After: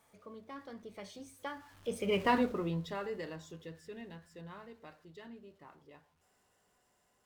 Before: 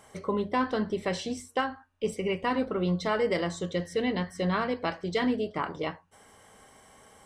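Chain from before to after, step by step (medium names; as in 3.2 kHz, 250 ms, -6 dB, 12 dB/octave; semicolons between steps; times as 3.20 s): jump at every zero crossing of -43.5 dBFS; Doppler pass-by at 2.26 s, 27 m/s, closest 4.6 m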